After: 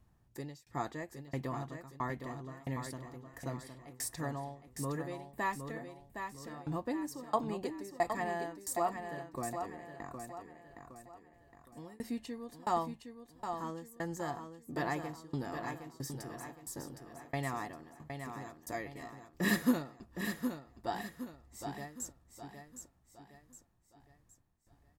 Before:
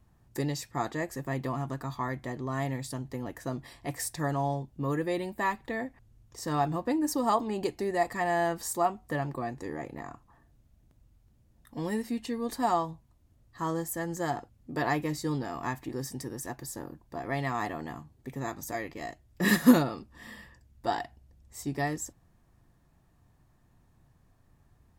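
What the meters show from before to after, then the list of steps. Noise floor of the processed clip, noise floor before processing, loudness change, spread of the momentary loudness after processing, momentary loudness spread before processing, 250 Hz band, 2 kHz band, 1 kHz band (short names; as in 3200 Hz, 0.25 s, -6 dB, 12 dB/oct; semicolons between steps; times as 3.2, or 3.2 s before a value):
-68 dBFS, -65 dBFS, -8.0 dB, 16 LU, 14 LU, -8.5 dB, -6.5 dB, -6.5 dB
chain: tremolo saw down 1.5 Hz, depth 100%; feedback echo 0.764 s, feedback 41%, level -7 dB; gain -3.5 dB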